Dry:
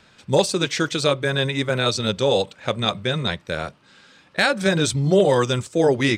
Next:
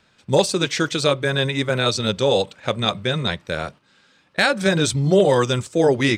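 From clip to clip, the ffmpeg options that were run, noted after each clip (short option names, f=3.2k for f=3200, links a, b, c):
-af "agate=range=-7dB:threshold=-41dB:ratio=16:detection=peak,volume=1dB"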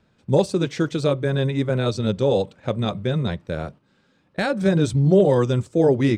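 -af "tiltshelf=f=820:g=7.5,volume=-4.5dB"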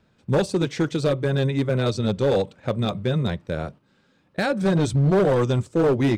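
-af "volume=15dB,asoftclip=hard,volume=-15dB"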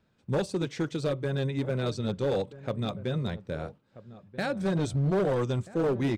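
-filter_complex "[0:a]asplit=2[a][b];[b]adelay=1283,volume=-16dB,highshelf=f=4k:g=-28.9[c];[a][c]amix=inputs=2:normalize=0,volume=-7.5dB"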